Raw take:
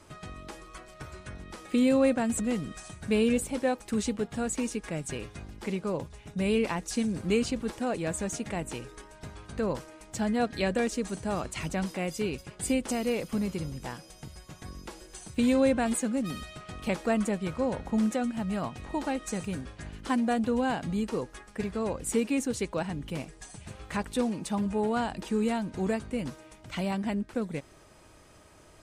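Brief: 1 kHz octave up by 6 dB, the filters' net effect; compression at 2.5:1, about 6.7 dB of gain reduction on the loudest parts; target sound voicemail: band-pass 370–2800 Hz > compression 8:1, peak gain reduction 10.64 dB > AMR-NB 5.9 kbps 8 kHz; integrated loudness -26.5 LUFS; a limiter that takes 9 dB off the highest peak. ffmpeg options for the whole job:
-af "equalizer=f=1000:t=o:g=8.5,acompressor=threshold=0.0398:ratio=2.5,alimiter=level_in=1.26:limit=0.0631:level=0:latency=1,volume=0.794,highpass=370,lowpass=2800,acompressor=threshold=0.00891:ratio=8,volume=11.2" -ar 8000 -c:a libopencore_amrnb -b:a 5900

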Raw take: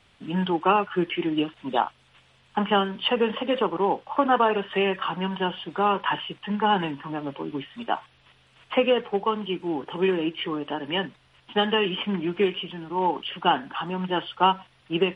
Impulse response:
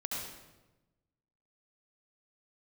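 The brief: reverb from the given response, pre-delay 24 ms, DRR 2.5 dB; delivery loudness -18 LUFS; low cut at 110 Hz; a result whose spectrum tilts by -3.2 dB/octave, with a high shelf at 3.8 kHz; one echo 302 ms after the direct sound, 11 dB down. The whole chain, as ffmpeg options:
-filter_complex "[0:a]highpass=110,highshelf=f=3800:g=-3.5,aecho=1:1:302:0.282,asplit=2[s0][s1];[1:a]atrim=start_sample=2205,adelay=24[s2];[s1][s2]afir=irnorm=-1:irlink=0,volume=0.531[s3];[s0][s3]amix=inputs=2:normalize=0,volume=2"

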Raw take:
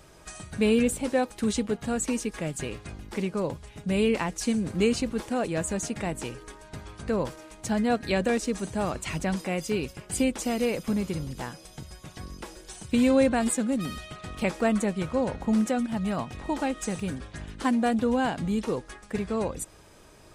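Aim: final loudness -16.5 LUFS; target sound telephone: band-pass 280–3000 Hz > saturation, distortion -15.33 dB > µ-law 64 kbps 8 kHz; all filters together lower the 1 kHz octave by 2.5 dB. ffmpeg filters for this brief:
-af "highpass=280,lowpass=3000,equalizer=f=1000:t=o:g=-3.5,asoftclip=threshold=0.0841,volume=7.08" -ar 8000 -c:a pcm_mulaw

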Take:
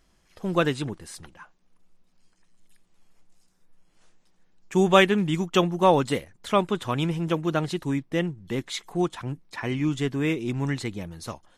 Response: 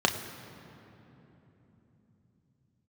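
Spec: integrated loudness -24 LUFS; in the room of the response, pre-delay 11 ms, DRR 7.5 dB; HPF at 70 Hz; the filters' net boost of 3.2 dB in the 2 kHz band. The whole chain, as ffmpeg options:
-filter_complex "[0:a]highpass=70,equalizer=f=2000:t=o:g=4,asplit=2[s0][s1];[1:a]atrim=start_sample=2205,adelay=11[s2];[s1][s2]afir=irnorm=-1:irlink=0,volume=0.0944[s3];[s0][s3]amix=inputs=2:normalize=0"

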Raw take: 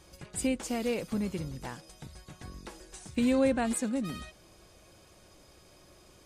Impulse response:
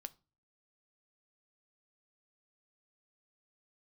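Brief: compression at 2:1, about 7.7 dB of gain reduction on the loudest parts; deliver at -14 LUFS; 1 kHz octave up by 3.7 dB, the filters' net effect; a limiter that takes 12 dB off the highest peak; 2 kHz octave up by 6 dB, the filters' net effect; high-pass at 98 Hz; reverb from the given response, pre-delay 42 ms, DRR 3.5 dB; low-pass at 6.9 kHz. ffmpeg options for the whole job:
-filter_complex "[0:a]highpass=98,lowpass=6900,equalizer=f=1000:t=o:g=4,equalizer=f=2000:t=o:g=6.5,acompressor=threshold=0.0178:ratio=2,alimiter=level_in=3.16:limit=0.0631:level=0:latency=1,volume=0.316,asplit=2[s0][s1];[1:a]atrim=start_sample=2205,adelay=42[s2];[s1][s2]afir=irnorm=-1:irlink=0,volume=1.19[s3];[s0][s3]amix=inputs=2:normalize=0,volume=25.1"

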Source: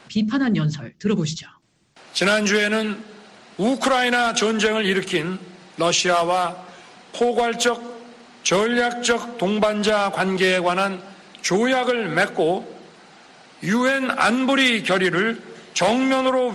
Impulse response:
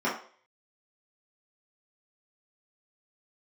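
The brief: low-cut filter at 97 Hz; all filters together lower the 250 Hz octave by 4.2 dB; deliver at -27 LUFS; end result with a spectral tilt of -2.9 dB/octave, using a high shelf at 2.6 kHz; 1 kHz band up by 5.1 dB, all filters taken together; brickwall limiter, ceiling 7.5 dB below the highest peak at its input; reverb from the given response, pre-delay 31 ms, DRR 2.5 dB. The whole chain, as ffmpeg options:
-filter_complex "[0:a]highpass=97,equalizer=f=250:t=o:g=-5.5,equalizer=f=1000:t=o:g=6.5,highshelf=f=2600:g=7,alimiter=limit=0.447:level=0:latency=1,asplit=2[s0][s1];[1:a]atrim=start_sample=2205,adelay=31[s2];[s1][s2]afir=irnorm=-1:irlink=0,volume=0.188[s3];[s0][s3]amix=inputs=2:normalize=0,volume=0.316"

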